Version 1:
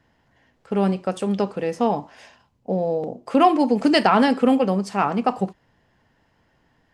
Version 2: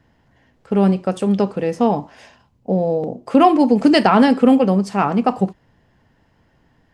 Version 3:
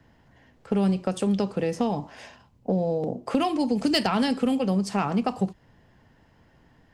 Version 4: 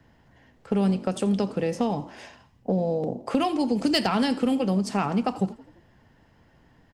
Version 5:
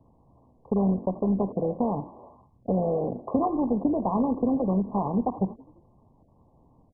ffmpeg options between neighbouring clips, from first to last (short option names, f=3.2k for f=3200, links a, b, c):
-af "lowshelf=f=390:g=6,volume=1.5dB"
-filter_complex "[0:a]acrossover=split=130|3000[a][b][c];[b]acompressor=threshold=-23dB:ratio=6[d];[a][d][c]amix=inputs=3:normalize=0,asoftclip=type=hard:threshold=-12.5dB"
-filter_complex "[0:a]asplit=5[a][b][c][d][e];[b]adelay=85,afreqshift=38,volume=-19.5dB[f];[c]adelay=170,afreqshift=76,volume=-25.2dB[g];[d]adelay=255,afreqshift=114,volume=-30.9dB[h];[e]adelay=340,afreqshift=152,volume=-36.5dB[i];[a][f][g][h][i]amix=inputs=5:normalize=0"
-af "volume=-1dB" -ar 24000 -c:a mp2 -b:a 8k